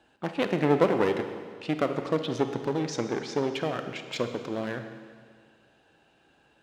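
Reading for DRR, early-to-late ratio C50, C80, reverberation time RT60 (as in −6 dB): 7.0 dB, 8.0 dB, 9.5 dB, 1.9 s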